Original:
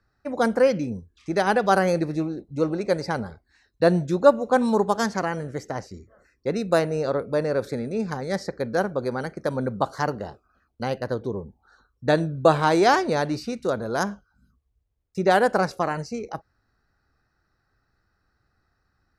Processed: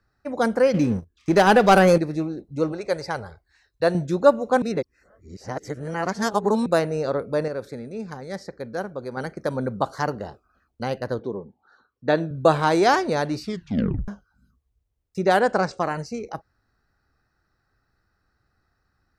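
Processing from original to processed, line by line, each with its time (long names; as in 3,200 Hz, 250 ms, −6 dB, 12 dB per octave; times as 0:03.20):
0:00.74–0:01.98: leveller curve on the samples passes 2
0:02.72–0:03.95: parametric band 230 Hz −13.5 dB 0.84 octaves
0:04.62–0:06.66: reverse
0:07.48–0:09.17: clip gain −6 dB
0:11.19–0:12.31: band-pass filter 170–4,100 Hz
0:13.43: tape stop 0.65 s
0:15.39–0:15.80: Butterworth low-pass 8,700 Hz 96 dB per octave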